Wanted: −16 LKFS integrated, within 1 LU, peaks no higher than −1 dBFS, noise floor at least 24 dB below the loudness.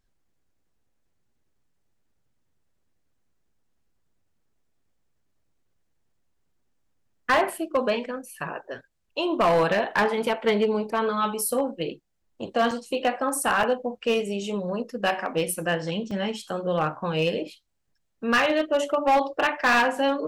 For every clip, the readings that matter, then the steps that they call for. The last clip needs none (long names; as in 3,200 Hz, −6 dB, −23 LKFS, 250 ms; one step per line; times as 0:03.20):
share of clipped samples 0.9%; peaks flattened at −15.5 dBFS; number of dropouts 3; longest dropout 4.2 ms; integrated loudness −25.0 LKFS; sample peak −15.5 dBFS; target loudness −16.0 LKFS
→ clipped peaks rebuilt −15.5 dBFS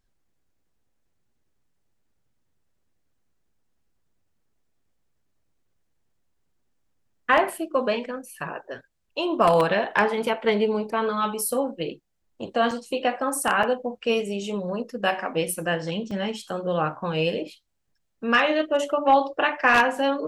share of clipped samples 0.0%; number of dropouts 3; longest dropout 4.2 ms
→ repair the gap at 0:12.71/0:13.63/0:16.11, 4.2 ms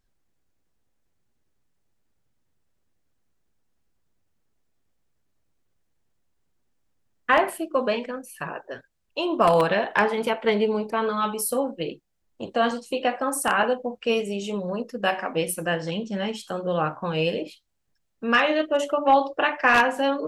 number of dropouts 0; integrated loudness −24.0 LKFS; sample peak −6.5 dBFS; target loudness −16.0 LKFS
→ level +8 dB
brickwall limiter −1 dBFS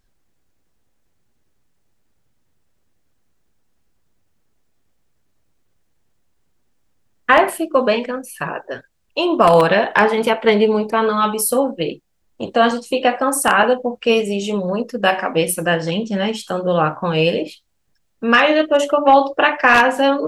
integrated loudness −16.5 LKFS; sample peak −1.0 dBFS; background noise floor −64 dBFS